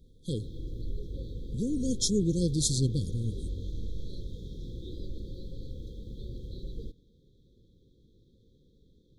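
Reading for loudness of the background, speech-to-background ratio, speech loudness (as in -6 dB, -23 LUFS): -42.0 LUFS, 12.0 dB, -30.0 LUFS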